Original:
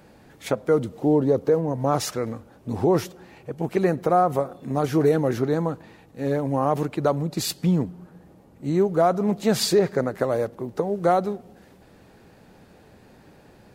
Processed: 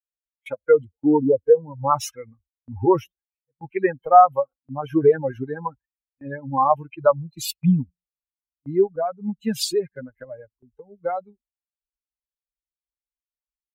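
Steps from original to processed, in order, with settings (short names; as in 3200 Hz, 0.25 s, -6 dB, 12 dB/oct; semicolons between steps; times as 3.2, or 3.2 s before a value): per-bin expansion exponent 3; gate with hold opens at -48 dBFS; AGC gain up to 11 dB; bell 920 Hz +9 dB 2.5 oct, from 8.96 s -6 dB; gain -6.5 dB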